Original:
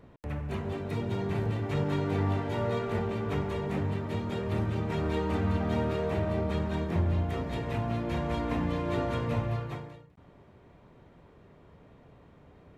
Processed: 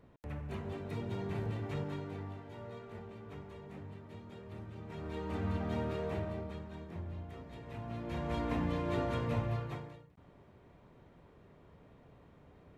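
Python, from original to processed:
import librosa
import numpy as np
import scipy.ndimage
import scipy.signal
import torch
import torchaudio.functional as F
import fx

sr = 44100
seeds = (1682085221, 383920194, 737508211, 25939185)

y = fx.gain(x, sr, db=fx.line((1.67, -7.0), (2.35, -17.0), (4.72, -17.0), (5.45, -7.0), (6.15, -7.0), (6.65, -15.5), (7.58, -15.5), (8.39, -4.0)))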